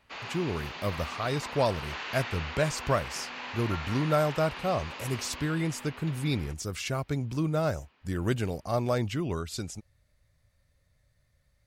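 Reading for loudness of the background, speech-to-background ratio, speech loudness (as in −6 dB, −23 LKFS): −39.0 LKFS, 8.0 dB, −31.0 LKFS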